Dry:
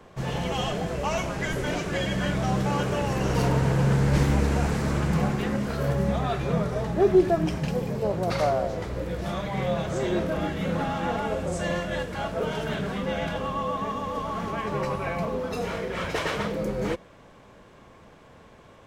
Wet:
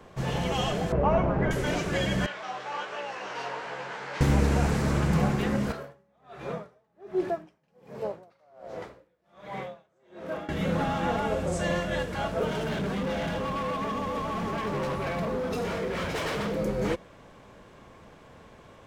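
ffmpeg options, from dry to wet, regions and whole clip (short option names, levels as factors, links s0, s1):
-filter_complex "[0:a]asettb=1/sr,asplit=3[s0][s1][s2];[s0]atrim=end=0.924[s3];[s1]atrim=start=0.92:end=1.51,asetpts=PTS-STARTPTS,afade=t=in:d=0.004:c=qsin,afade=t=out:st=0.586:d=0.004:c=qsin,lowpass=1100,acontrast=37[s4];[s2]atrim=start=1.506[s5];[s3][s4]acrossfade=d=0.004:c1=hsin:c2=qsin[s6];[s6][s5]acrossfade=d=0.004:c1=qsin:c2=hsin,asettb=1/sr,asplit=3[s7][s8][s9];[s7]atrim=end=2.264[s10];[s8]atrim=start=2.26:end=4.21,asetpts=PTS-STARTPTS,afade=t=in:d=0.004:c=qsin,afade=t=out:st=1.946:d=0.004:c=qsin,flanger=delay=15.5:depth=7.8:speed=1.3,highpass=790,lowpass=4100,asplit=2[s11][s12];[s12]adelay=16,volume=0.299[s13];[s11][s13]amix=inputs=2:normalize=0,atrim=end_sample=85995[s14];[s9]atrim=start=4.206[s15];[s10][s14]acrossfade=d=0.004:c1=hsin:c2=qsin[s16];[s16][s15]acrossfade=d=0.004:c1=qsin:c2=hsin,asettb=1/sr,asplit=3[s17][s18][s19];[s17]atrim=end=5.724[s20];[s18]atrim=start=5.72:end=10.49,asetpts=PTS-STARTPTS,afade=t=in:d=0.004:c=qsin,afade=t=out:st=4.766:d=0.004:c=qsin,highpass=f=610:p=1,highshelf=f=2500:g=-10,aeval=exprs='val(0)*pow(10,-36*(0.5-0.5*cos(2*PI*1.3*n/s))/20)':c=same[s21];[s19]atrim=start=10.486[s22];[s20][s21]acrossfade=d=0.004:c1=hsin:c2=qsin[s23];[s23][s22]acrossfade=d=0.004:c1=qsin:c2=hsin,asettb=1/sr,asplit=3[s24][s25][s26];[s24]atrim=end=12.474[s27];[s25]atrim=start=12.47:end=16.52,asetpts=PTS-STARTPTS,afade=t=in:d=0.004:c=qsin,afade=t=out:st=4.046:d=0.004:c=qsin,asoftclip=type=hard:threshold=0.0355,equalizer=f=270:t=o:w=2.2:g=3.5[s28];[s26]atrim=start=16.516[s29];[s27][s28]acrossfade=d=0.004:c1=hsin:c2=qsin[s30];[s30][s29]acrossfade=d=0.004:c1=qsin:c2=hsin"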